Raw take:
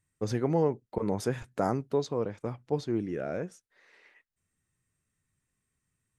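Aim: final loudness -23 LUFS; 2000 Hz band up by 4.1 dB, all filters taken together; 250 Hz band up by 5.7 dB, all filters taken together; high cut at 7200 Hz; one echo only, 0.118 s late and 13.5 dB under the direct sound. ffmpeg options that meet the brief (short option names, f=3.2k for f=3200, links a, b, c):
-af "lowpass=7.2k,equalizer=f=250:t=o:g=7.5,equalizer=f=2k:t=o:g=5.5,aecho=1:1:118:0.211,volume=5dB"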